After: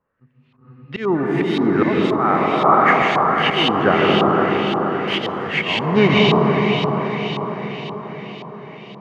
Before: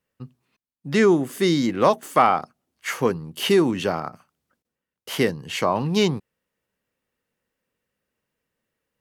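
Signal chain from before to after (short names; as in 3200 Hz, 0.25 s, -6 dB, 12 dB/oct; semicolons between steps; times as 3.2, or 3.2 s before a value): diffused feedback echo 0.516 s, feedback 59%, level -8 dB; auto swell 0.364 s; delay with a stepping band-pass 0.361 s, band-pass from 790 Hz, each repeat 1.4 oct, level -9.5 dB; plate-style reverb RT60 2.6 s, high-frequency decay 0.75×, pre-delay 0.12 s, DRR -1 dB; LFO low-pass saw up 1.9 Hz 1000–3500 Hz; gain +5 dB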